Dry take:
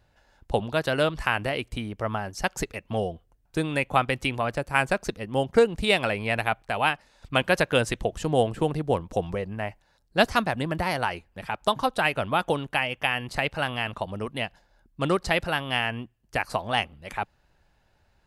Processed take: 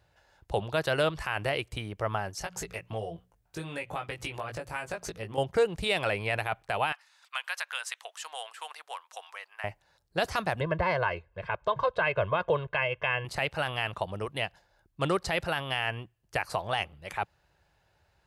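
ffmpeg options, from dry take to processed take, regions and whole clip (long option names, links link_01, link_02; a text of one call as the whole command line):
ffmpeg -i in.wav -filter_complex "[0:a]asettb=1/sr,asplit=3[link_01][link_02][link_03];[link_01]atrim=end=2.394[link_04];[link_02]atrim=start=2.39:end=5.38,asetpts=PTS-STARTPTS,afade=type=in:duration=0.004:curve=qsin,afade=type=out:start_time=2.986:duration=0.004:curve=qsin,bandreject=frequency=60:width_type=h:width=6,bandreject=frequency=120:width_type=h:width=6,bandreject=frequency=180:width_type=h:width=6,bandreject=frequency=240:width_type=h:width=6,acompressor=threshold=-32dB:ratio=4:attack=3.2:release=140:knee=1:detection=peak,asplit=2[link_05][link_06];[link_06]adelay=18,volume=-4dB[link_07];[link_05][link_07]amix=inputs=2:normalize=0,atrim=end_sample=131859[link_08];[link_03]atrim=start=5.376[link_09];[link_04][link_08]acrossfade=duration=0.004:curve1=hsin:curve2=qsin[link_10];[link_10][link_09]acrossfade=duration=0.004:curve1=qsin:curve2=hsin,asettb=1/sr,asplit=3[link_11][link_12][link_13];[link_11]atrim=end=6.924[link_14];[link_12]atrim=start=6.92:end=9.64,asetpts=PTS-STARTPTS,afade=type=in:duration=0.004:curve=qsin,afade=type=out:start_time=2.716:duration=0.004:curve=qsin,highpass=frequency=1000:width=0.5412,highpass=frequency=1000:width=1.3066,acompressor=threshold=-33dB:ratio=2:attack=3.2:release=140:knee=1:detection=peak[link_15];[link_13]atrim=start=9.636[link_16];[link_14][link_15]acrossfade=duration=0.004:curve1=hsin:curve2=qsin[link_17];[link_17][link_16]acrossfade=duration=0.004:curve1=qsin:curve2=hsin,asettb=1/sr,asplit=3[link_18][link_19][link_20];[link_18]atrim=end=10.604[link_21];[link_19]atrim=start=10.6:end=13.25,asetpts=PTS-STARTPTS,afade=type=in:duration=0.004:curve=qsin,afade=type=out:start_time=2.646:duration=0.004:curve=qsin,lowpass=2400,aecho=1:1:1.9:0.8,atrim=end_sample=116865[link_22];[link_20]atrim=start=13.246[link_23];[link_21][link_22]acrossfade=duration=0.004:curve1=hsin:curve2=qsin[link_24];[link_24][link_23]acrossfade=duration=0.004:curve1=qsin:curve2=hsin,highpass=59,equalizer=frequency=240:width=3.3:gain=-12.5,alimiter=limit=-15.5dB:level=0:latency=1:release=20,volume=-1dB" out.wav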